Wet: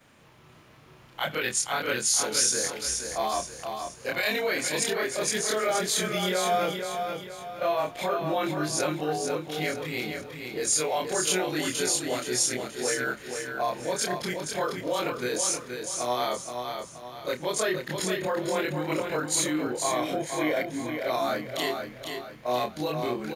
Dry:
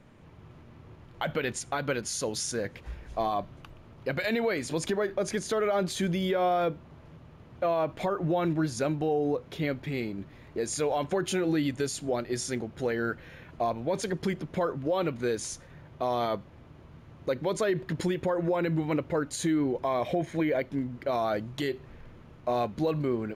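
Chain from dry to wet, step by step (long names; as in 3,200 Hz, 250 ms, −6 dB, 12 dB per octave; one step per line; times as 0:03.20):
every overlapping window played backwards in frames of 65 ms
spectral tilt +3 dB per octave
repeating echo 475 ms, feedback 40%, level −6 dB
level +5 dB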